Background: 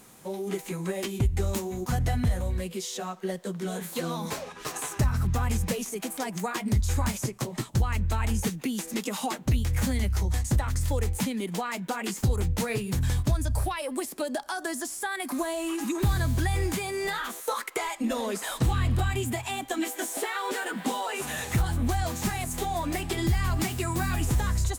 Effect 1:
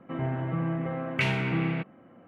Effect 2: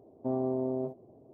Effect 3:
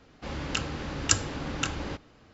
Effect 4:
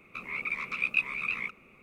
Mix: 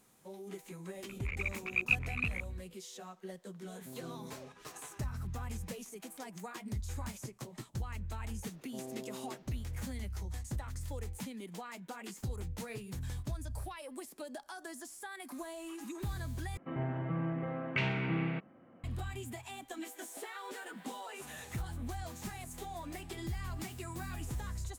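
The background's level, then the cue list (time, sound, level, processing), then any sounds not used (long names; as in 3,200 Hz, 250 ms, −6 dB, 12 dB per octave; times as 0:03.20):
background −14 dB
0:00.94: mix in 4 −2 dB + adaptive Wiener filter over 41 samples
0:03.61: mix in 2 −10.5 dB + parametric band 690 Hz −14.5 dB 2.7 octaves
0:08.48: mix in 2 −14.5 dB + linear delta modulator 32 kbit/s, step −44.5 dBFS
0:16.57: overwrite with 1 −6 dB + low-pass filter 5,000 Hz
not used: 3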